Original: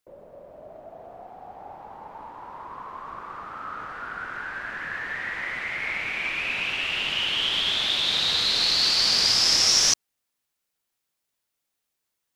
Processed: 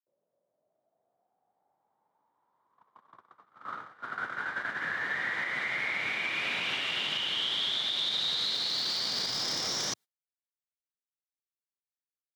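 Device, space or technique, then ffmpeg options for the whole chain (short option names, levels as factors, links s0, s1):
broadcast voice chain: -af "highshelf=f=11000:g=-3,bandreject=f=2600:w=7.9,agate=range=0.0112:threshold=0.0224:ratio=16:detection=peak,highpass=f=110:w=0.5412,highpass=f=110:w=1.3066,deesser=0.55,acompressor=threshold=0.0224:ratio=6,equalizer=f=3700:t=o:w=0.24:g=5.5,alimiter=level_in=1.19:limit=0.0631:level=0:latency=1:release=138,volume=0.841,volume=1.58"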